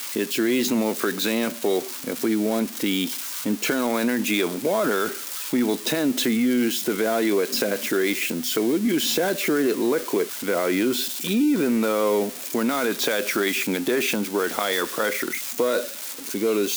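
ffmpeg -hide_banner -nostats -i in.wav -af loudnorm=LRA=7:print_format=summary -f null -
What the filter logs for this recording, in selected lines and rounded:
Input Integrated:    -23.3 LUFS
Input True Peak:      -7.3 dBTP
Input LRA:             1.6 LU
Input Threshold:     -33.3 LUFS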